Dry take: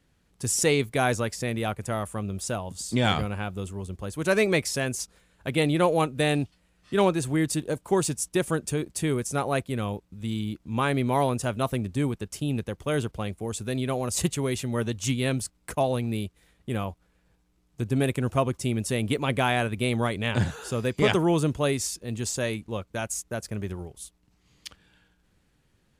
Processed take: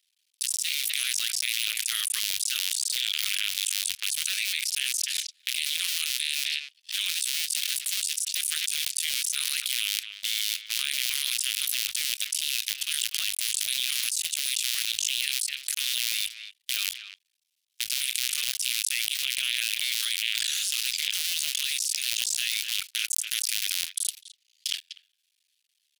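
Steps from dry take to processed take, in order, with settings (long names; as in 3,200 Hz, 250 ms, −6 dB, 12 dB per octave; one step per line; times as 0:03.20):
sub-harmonics by changed cycles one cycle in 2, muted
inverse Chebyshev high-pass filter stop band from 860 Hz, stop band 60 dB
noise gate −59 dBFS, range −33 dB
parametric band 7,200 Hz −4 dB 0.35 octaves
far-end echo of a speakerphone 250 ms, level −28 dB
envelope flattener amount 100%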